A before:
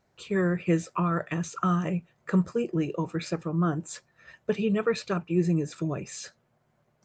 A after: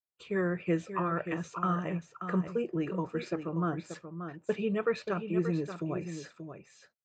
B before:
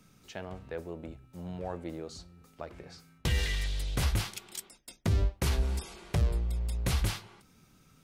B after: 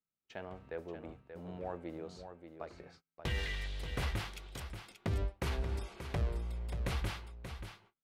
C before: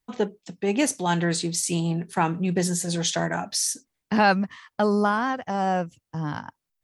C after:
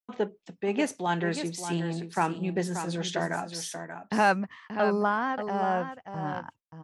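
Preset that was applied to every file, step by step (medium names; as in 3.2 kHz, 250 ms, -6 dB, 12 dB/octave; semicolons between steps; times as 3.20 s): gate -49 dBFS, range -34 dB; tone controls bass -5 dB, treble -11 dB; on a send: delay 582 ms -9 dB; on the sum: trim -3 dB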